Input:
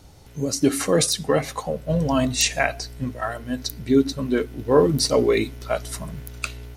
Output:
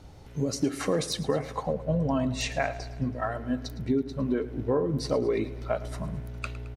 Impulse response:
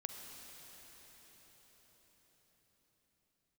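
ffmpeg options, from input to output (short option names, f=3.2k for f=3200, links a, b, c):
-af "asetnsamples=n=441:p=0,asendcmd='1.19 lowpass f 1100',lowpass=f=2.7k:p=1,acompressor=threshold=-23dB:ratio=6,aecho=1:1:109|218|327|436|545:0.15|0.0853|0.0486|0.0277|0.0158"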